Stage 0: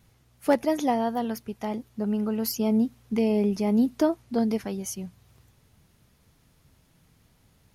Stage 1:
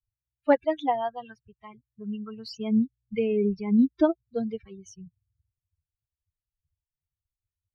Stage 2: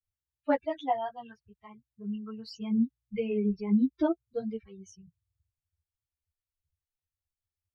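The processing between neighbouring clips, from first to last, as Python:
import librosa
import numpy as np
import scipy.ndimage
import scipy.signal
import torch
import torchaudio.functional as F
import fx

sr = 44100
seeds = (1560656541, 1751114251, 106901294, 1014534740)

y1 = fx.bin_expand(x, sr, power=3.0)
y1 = scipy.signal.sosfilt(scipy.signal.butter(4, 4300.0, 'lowpass', fs=sr, output='sos'), y1)
y1 = F.gain(torch.from_numpy(y1), 4.5).numpy()
y2 = fx.ensemble(y1, sr)
y2 = F.gain(torch.from_numpy(y2), -1.5).numpy()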